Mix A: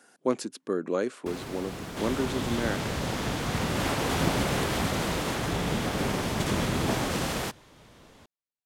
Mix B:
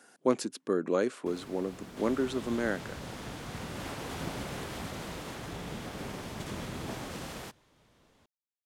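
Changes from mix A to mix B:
first sound -10.0 dB; second sound -11.5 dB

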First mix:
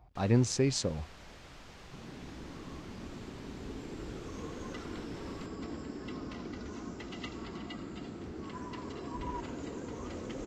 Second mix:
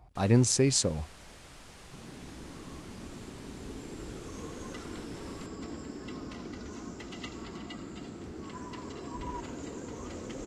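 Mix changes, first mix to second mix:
speech +3.0 dB; master: add peaking EQ 9.7 kHz +15 dB 0.68 oct

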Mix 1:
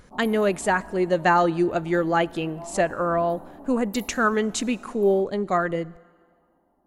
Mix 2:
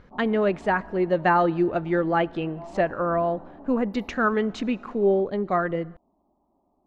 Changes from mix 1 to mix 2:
background: send off; master: add distance through air 250 m

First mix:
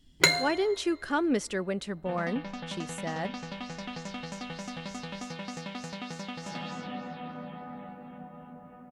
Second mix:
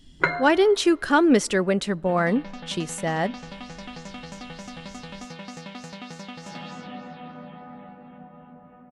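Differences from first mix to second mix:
speech +9.5 dB; first sound: add resonant low-pass 1.4 kHz, resonance Q 2.6

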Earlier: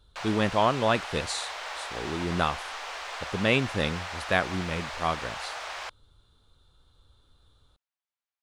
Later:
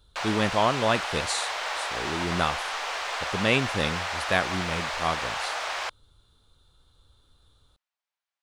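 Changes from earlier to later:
speech: add treble shelf 5.3 kHz +6 dB; background +6.0 dB

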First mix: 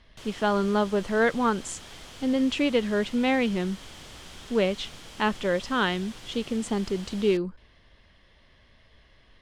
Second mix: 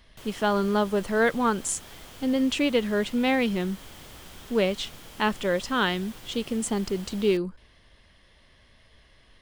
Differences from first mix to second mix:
background: add treble shelf 3.5 kHz -10 dB; master: remove distance through air 76 m

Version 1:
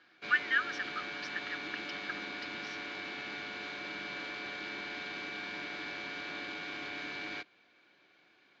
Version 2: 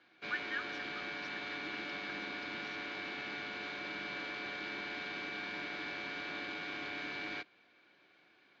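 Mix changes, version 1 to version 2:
speech -10.5 dB; background: add distance through air 59 m

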